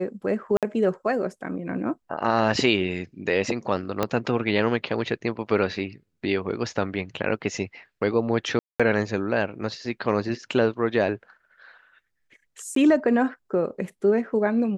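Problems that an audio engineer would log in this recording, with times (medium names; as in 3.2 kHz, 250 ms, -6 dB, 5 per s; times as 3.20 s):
0.57–0.63 s: dropout 57 ms
4.03 s: pop -9 dBFS
8.59–8.80 s: dropout 206 ms
12.75–12.76 s: dropout 13 ms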